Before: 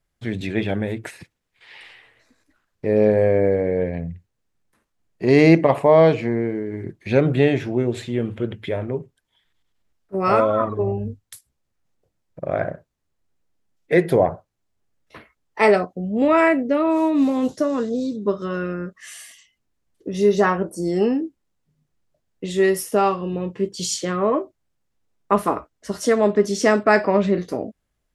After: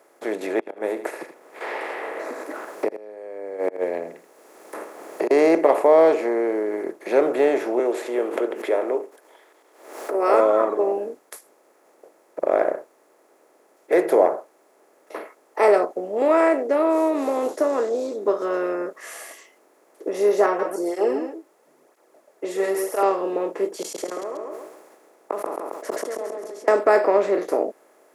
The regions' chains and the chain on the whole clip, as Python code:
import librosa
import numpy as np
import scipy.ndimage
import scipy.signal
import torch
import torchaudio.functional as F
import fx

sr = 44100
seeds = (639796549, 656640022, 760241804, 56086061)

y = fx.chain(x, sr, fx.gate_flip(shuts_db=-11.0, range_db=-41),
    fx.echo_single(ms=80, db=-18.5),
    fx.band_squash(depth_pct=100), at=(0.59, 5.31))
y = fx.chain(y, sr, fx.highpass(hz=290.0, slope=24),
    fx.pre_swell(db_per_s=130.0), at=(7.79, 10.34))
y = fx.chain(y, sr, fx.echo_single(ms=130, db=-9.5),
    fx.flanger_cancel(hz=1.0, depth_ms=4.4), at=(20.46, 23.03))
y = fx.chain(y, sr, fx.gate_flip(shuts_db=-18.0, range_db=-40),
    fx.echo_feedback(ms=135, feedback_pct=30, wet_db=-5.5),
    fx.sustainer(db_per_s=27.0), at=(23.81, 26.68))
y = fx.bin_compress(y, sr, power=0.6)
y = scipy.signal.sosfilt(scipy.signal.butter(4, 380.0, 'highpass', fs=sr, output='sos'), y)
y = fx.peak_eq(y, sr, hz=3300.0, db=-12.0, octaves=2.6)